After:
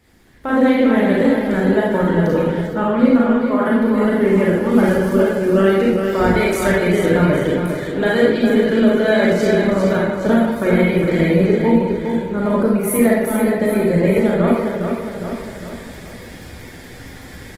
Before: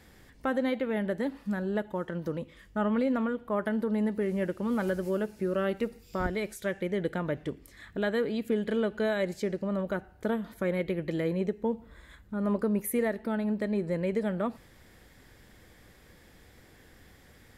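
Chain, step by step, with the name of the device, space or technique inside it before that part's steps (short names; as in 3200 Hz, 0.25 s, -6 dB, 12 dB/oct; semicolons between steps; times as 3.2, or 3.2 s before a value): darkening echo 0.116 s, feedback 62%, low-pass 920 Hz, level -20 dB; feedback echo 0.407 s, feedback 43%, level -6.5 dB; speakerphone in a meeting room (reverb RT60 0.60 s, pre-delay 31 ms, DRR -3.5 dB; speakerphone echo 0.17 s, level -12 dB; AGC gain up to 14.5 dB; gain -1 dB; Opus 16 kbps 48000 Hz)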